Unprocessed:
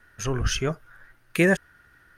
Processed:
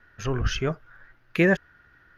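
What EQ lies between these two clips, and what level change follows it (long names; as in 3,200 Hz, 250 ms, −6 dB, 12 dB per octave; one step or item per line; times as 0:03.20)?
moving average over 5 samples
0.0 dB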